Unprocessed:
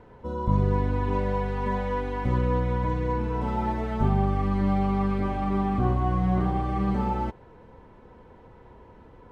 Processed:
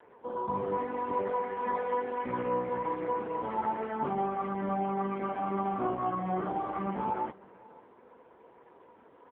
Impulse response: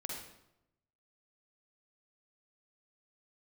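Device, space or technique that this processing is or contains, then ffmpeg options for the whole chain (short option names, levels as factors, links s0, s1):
satellite phone: -af "highpass=320,lowpass=3100,aecho=1:1:546:0.0631" -ar 8000 -c:a libopencore_amrnb -b:a 5150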